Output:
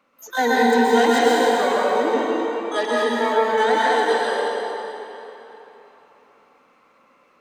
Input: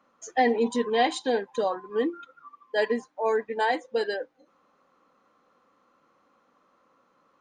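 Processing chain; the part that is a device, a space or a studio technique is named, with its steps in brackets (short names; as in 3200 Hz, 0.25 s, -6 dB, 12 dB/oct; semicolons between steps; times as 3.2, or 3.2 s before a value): shimmer-style reverb (harmoniser +12 st -6 dB; reverb RT60 3.4 s, pre-delay 0.113 s, DRR -6 dB)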